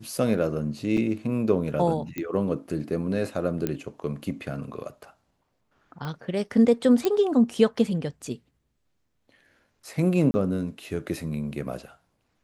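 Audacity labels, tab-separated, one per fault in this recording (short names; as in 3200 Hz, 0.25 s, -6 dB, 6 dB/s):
0.970000	0.980000	gap 5.3 ms
2.180000	2.180000	pop -17 dBFS
3.670000	3.670000	pop -13 dBFS
6.050000	6.050000	pop -21 dBFS
7.050000	7.050000	pop -11 dBFS
10.310000	10.340000	gap 30 ms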